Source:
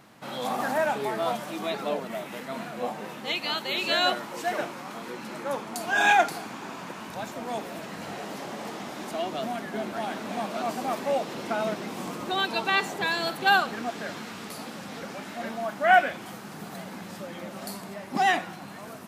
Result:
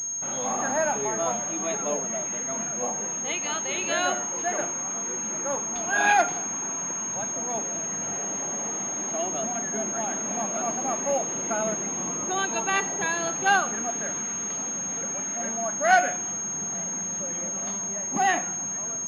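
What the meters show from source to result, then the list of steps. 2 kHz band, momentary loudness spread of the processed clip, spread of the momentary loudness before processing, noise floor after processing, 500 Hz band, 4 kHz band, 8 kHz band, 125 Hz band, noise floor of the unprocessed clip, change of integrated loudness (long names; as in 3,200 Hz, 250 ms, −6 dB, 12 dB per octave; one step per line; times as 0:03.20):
−1.0 dB, 6 LU, 16 LU, −31 dBFS, 0.0 dB, −6.5 dB, +21.5 dB, 0.0 dB, −41 dBFS, +2.5 dB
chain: hum removal 241.6 Hz, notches 36
switching amplifier with a slow clock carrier 6,500 Hz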